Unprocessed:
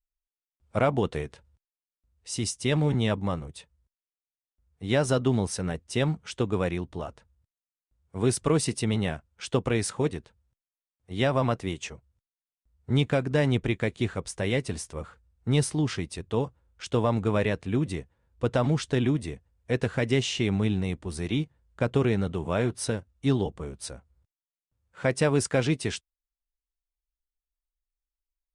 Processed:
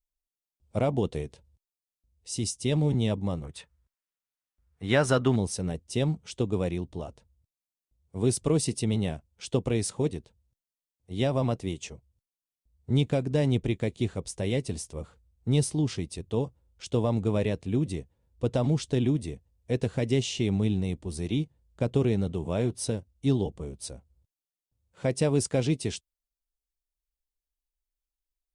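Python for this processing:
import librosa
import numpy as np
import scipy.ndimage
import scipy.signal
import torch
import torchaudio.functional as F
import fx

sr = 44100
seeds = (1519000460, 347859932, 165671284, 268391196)

y = fx.peak_eq(x, sr, hz=1500.0, db=fx.steps((0.0, -13.0), (3.44, 4.5), (5.36, -12.0)), octaves=1.4)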